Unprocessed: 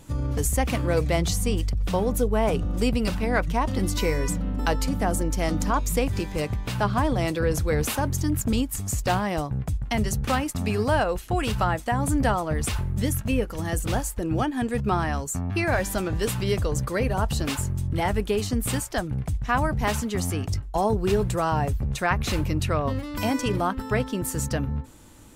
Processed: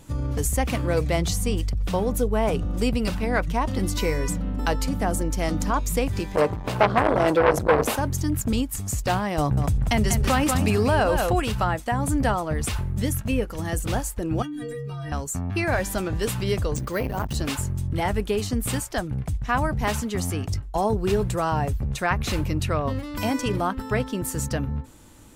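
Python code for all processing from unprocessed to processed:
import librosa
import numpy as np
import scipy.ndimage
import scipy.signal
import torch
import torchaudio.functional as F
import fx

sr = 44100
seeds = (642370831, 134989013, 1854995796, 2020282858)

y = fx.chain(x, sr, fx.peak_eq(hz=560.0, db=13.5, octaves=1.9),
    fx.transformer_sat(knee_hz=1400.0), at=(6.35, 7.96))
y = fx.chain(y, sr, fx.echo_single(ms=191, db=-10.0),
    fx.env_flatten(amount_pct=70), at=(9.38, 11.4))
y = fx.chain(y, sr, fx.peak_eq(hz=920.0, db=-12.0, octaves=0.73),
    fx.stiff_resonator(f0_hz=140.0, decay_s=0.64, stiffness=0.03),
    fx.env_flatten(amount_pct=100), at=(14.42, 15.12))
y = fx.chain(y, sr, fx.resample_bad(factor=3, down='none', up='hold'),
    fx.transformer_sat(knee_hz=350.0), at=(16.76, 17.35))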